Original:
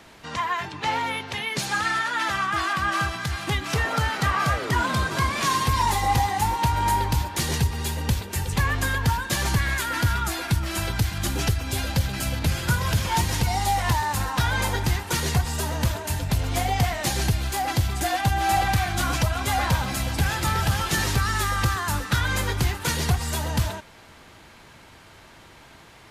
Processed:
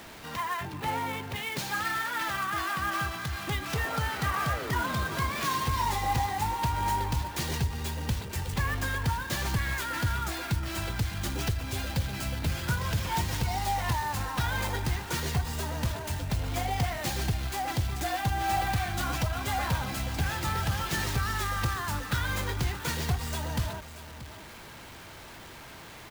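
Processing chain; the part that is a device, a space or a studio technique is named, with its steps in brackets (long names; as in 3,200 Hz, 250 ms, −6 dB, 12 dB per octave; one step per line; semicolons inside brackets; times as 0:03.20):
0:00.61–0:01.36: spectral tilt −2 dB per octave
single-tap delay 631 ms −18 dB
early CD player with a faulty converter (converter with a step at zero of −36 dBFS; converter with an unsteady clock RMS 0.02 ms)
level −7 dB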